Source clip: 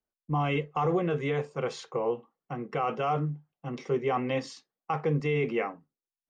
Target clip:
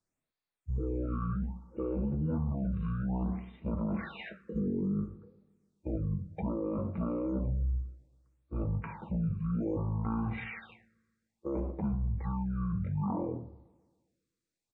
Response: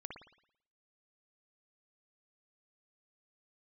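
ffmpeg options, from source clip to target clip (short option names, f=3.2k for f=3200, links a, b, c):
-filter_complex "[0:a]alimiter=level_in=4.5dB:limit=-24dB:level=0:latency=1:release=17,volume=-4.5dB,asplit=2[a][b];[1:a]atrim=start_sample=2205[c];[b][c]afir=irnorm=-1:irlink=0,volume=-14dB[d];[a][d]amix=inputs=2:normalize=0,asetrate=18846,aresample=44100,bandreject=f=3k:w=6.5,afftfilt=real='re*(1-between(b*sr/1024,730*pow(7200/730,0.5+0.5*sin(2*PI*0.61*pts/sr))/1.41,730*pow(7200/730,0.5+0.5*sin(2*PI*0.61*pts/sr))*1.41))':imag='im*(1-between(b*sr/1024,730*pow(7200/730,0.5+0.5*sin(2*PI*0.61*pts/sr))/1.41,730*pow(7200/730,0.5+0.5*sin(2*PI*0.61*pts/sr))*1.41))':win_size=1024:overlap=0.75,volume=2.5dB"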